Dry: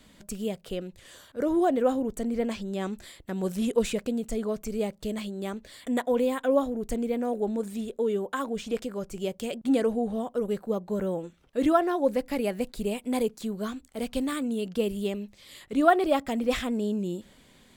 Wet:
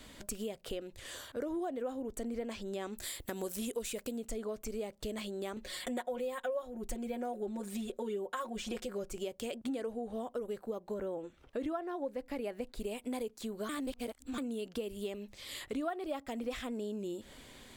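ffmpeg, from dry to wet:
ffmpeg -i in.wav -filter_complex "[0:a]asettb=1/sr,asplit=3[link_01][link_02][link_03];[link_01]atrim=end=2.974[link_04];[link_02]atrim=start=2.97:end=4.17,asetpts=PTS-STARTPTS,afade=type=in:duration=0.004:curve=qsin,afade=type=out:start_time=1.196:duration=0.004:curve=qsin,aemphasis=mode=production:type=50kf[link_05];[link_03]atrim=start=4.166[link_06];[link_04][link_05]acrossfade=duration=0.004:curve1=hsin:curve2=qsin[link_07];[link_07][link_06]acrossfade=duration=0.004:curve1=qsin:curve2=hsin,asettb=1/sr,asplit=3[link_08][link_09][link_10];[link_08]atrim=end=5.564[link_11];[link_09]atrim=start=5.56:end=9.13,asetpts=PTS-STARTPTS,afade=type=in:duration=0.004:curve=qsin,afade=type=out:start_time=3.566:duration=0.004:curve=qsin,aecho=1:1:5.5:1,atrim=end_sample=157437[link_12];[link_10]atrim=start=9.126[link_13];[link_11][link_12]acrossfade=duration=0.004:curve1=hsin:curve2=qsin[link_14];[link_14][link_13]acrossfade=duration=0.004:curve1=qsin:curve2=hsin,asettb=1/sr,asplit=3[link_15][link_16][link_17];[link_15]atrim=end=10.944[link_18];[link_16]atrim=start=10.94:end=12.8,asetpts=PTS-STARTPTS,afade=type=in:duration=0.004:curve=qsin,afade=type=out:start_time=1.856:duration=0.004:curve=qsin,highshelf=frequency=3800:gain=-7.5[link_19];[link_17]atrim=start=12.796[link_20];[link_18][link_19]acrossfade=duration=0.004:curve1=hsin:curve2=qsin[link_21];[link_21][link_20]acrossfade=duration=0.004:curve1=qsin:curve2=hsin,asplit=3[link_22][link_23][link_24];[link_22]atrim=end=13.692[link_25];[link_23]atrim=start=13.688:end=14.382,asetpts=PTS-STARTPTS,areverse[link_26];[link_24]atrim=start=14.378[link_27];[link_25][link_26]acrossfade=duration=0.004:curve1=hsin:curve2=hsin[link_28];[link_28][link_27]acrossfade=duration=0.004:curve1=hsin:curve2=hsin,equalizer=frequency=180:width_type=o:width=0.43:gain=-11.5,acompressor=threshold=-41dB:ratio=5,volume=4dB" out.wav

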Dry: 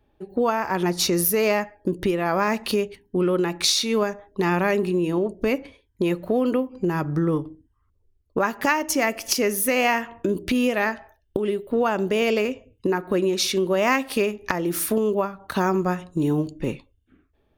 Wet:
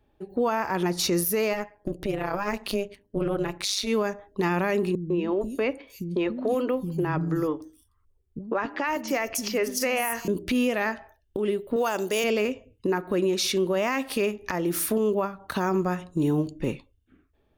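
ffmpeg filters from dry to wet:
ffmpeg -i in.wav -filter_complex "[0:a]asplit=3[link_01][link_02][link_03];[link_01]afade=type=out:start_time=1.52:duration=0.02[link_04];[link_02]tremolo=f=200:d=0.857,afade=type=in:start_time=1.52:duration=0.02,afade=type=out:start_time=3.86:duration=0.02[link_05];[link_03]afade=type=in:start_time=3.86:duration=0.02[link_06];[link_04][link_05][link_06]amix=inputs=3:normalize=0,asettb=1/sr,asplit=3[link_07][link_08][link_09];[link_07]atrim=end=4.954[link_10];[link_08]atrim=start=4.95:end=10.28,asetpts=PTS-STARTPTS,afade=type=in:duration=0.004:curve=qsin,afade=type=out:start_time=5.326:duration=0.004:curve=qsin,acrossover=split=230|4700[link_11][link_12][link_13];[link_12]adelay=150[link_14];[link_13]adelay=460[link_15];[link_11][link_14][link_15]amix=inputs=3:normalize=0,atrim=end_sample=235053[link_16];[link_09]atrim=start=10.276[link_17];[link_10][link_16]acrossfade=duration=0.004:curve1=hsin:curve2=qsin[link_18];[link_18][link_17]acrossfade=duration=0.004:curve1=qsin:curve2=hsin,asettb=1/sr,asplit=3[link_19][link_20][link_21];[link_19]atrim=end=11.764[link_22];[link_20]atrim=start=11.76:end=12.24,asetpts=PTS-STARTPTS,afade=type=in:duration=0.004:curve=qsin,afade=type=out:start_time=0.476:duration=0.004:curve=qsin,bass=frequency=250:gain=-11,treble=frequency=4000:gain=14[link_23];[link_21]atrim=start=12.236[link_24];[link_22][link_23]acrossfade=duration=0.004:curve1=hsin:curve2=qsin[link_25];[link_25][link_24]acrossfade=duration=0.004:curve1=qsin:curve2=hsin,alimiter=limit=-14.5dB:level=0:latency=1:release=30,volume=-1.5dB" out.wav

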